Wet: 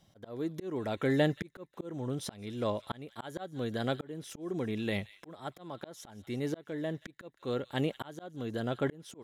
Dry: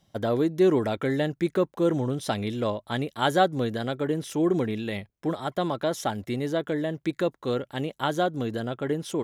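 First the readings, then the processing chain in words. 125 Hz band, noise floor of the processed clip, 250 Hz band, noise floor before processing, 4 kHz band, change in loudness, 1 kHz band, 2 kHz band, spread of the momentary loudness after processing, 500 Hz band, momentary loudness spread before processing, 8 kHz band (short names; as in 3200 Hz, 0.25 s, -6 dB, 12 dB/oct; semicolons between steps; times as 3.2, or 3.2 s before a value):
-7.0 dB, -67 dBFS, -9.0 dB, -71 dBFS, -8.5 dB, -9.0 dB, -13.0 dB, -7.5 dB, 13 LU, -10.0 dB, 8 LU, -8.0 dB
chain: thin delay 0.179 s, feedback 50%, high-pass 2300 Hz, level -16.5 dB; auto swell 0.657 s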